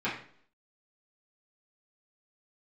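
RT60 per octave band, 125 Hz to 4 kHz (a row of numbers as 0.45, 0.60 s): 0.55, 0.60, 0.60, 0.50, 0.50, 0.50 s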